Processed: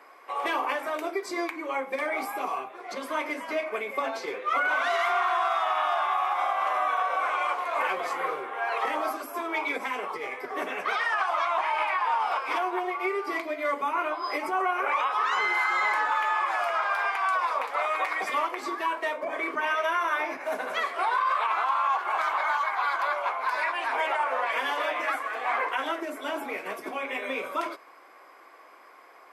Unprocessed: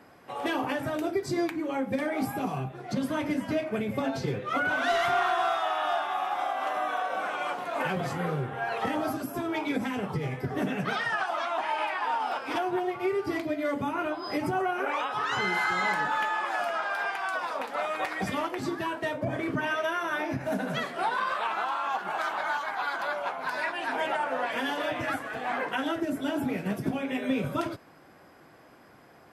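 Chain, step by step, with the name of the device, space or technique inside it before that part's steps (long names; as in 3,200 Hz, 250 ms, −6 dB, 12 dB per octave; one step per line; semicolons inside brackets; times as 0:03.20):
laptop speaker (high-pass filter 380 Hz 24 dB per octave; parametric band 1,100 Hz +11 dB 0.35 octaves; parametric band 2,200 Hz +9 dB 0.28 octaves; brickwall limiter −17 dBFS, peak gain reduction 6 dB)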